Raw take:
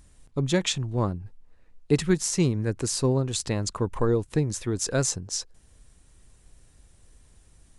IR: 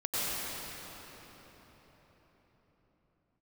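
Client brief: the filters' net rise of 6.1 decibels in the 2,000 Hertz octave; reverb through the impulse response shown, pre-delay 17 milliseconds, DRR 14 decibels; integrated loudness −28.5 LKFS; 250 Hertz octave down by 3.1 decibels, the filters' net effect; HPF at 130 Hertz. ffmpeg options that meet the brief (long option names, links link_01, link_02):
-filter_complex "[0:a]highpass=130,equalizer=frequency=250:width_type=o:gain=-4,equalizer=frequency=2000:width_type=o:gain=8,asplit=2[link_01][link_02];[1:a]atrim=start_sample=2205,adelay=17[link_03];[link_02][link_03]afir=irnorm=-1:irlink=0,volume=-23.5dB[link_04];[link_01][link_04]amix=inputs=2:normalize=0,volume=-1.5dB"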